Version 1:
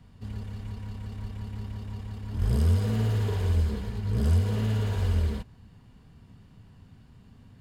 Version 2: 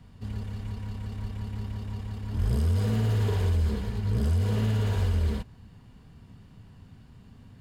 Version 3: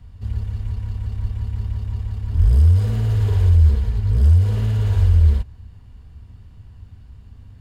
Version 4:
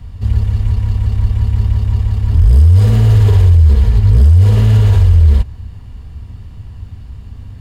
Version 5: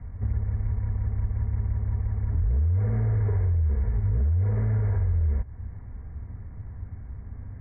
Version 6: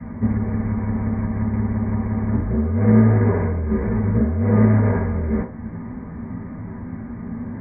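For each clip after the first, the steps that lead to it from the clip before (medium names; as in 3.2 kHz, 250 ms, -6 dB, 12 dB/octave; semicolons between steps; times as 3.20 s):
peak limiter -20 dBFS, peak gain reduction 6 dB; trim +2 dB
resonant low shelf 110 Hz +11.5 dB, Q 1.5
band-stop 1.5 kHz, Q 17; loudness maximiser +12.5 dB; trim -1 dB
compression 2.5:1, threshold -17 dBFS, peak gain reduction 8.5 dB; rippled Chebyshev low-pass 2.2 kHz, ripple 3 dB; trim -5 dB
reverberation RT60 0.40 s, pre-delay 3 ms, DRR -12.5 dB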